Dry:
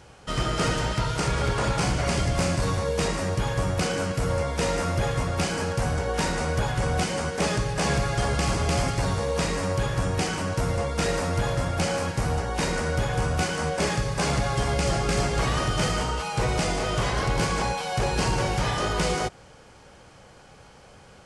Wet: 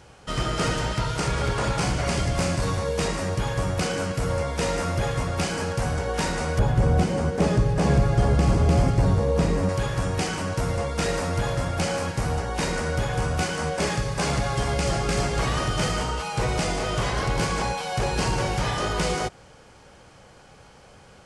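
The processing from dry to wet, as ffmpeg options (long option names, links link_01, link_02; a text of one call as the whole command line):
ffmpeg -i in.wav -filter_complex "[0:a]asettb=1/sr,asplit=3[link_01][link_02][link_03];[link_01]atrim=end=6.594[link_04];[link_02]atrim=start=6.59:end=9.69,asetpts=PTS-STARTPTS,afade=type=in:duration=0.004:curve=qsin,afade=type=out:start_time=3.096:duration=0.004:curve=qsin,tiltshelf=frequency=840:gain=7[link_05];[link_03]atrim=start=9.686[link_06];[link_04][link_05]acrossfade=duration=0.004:curve1=hsin:curve2=qsin[link_07];[link_07][link_06]acrossfade=duration=0.004:curve1=qsin:curve2=hsin" out.wav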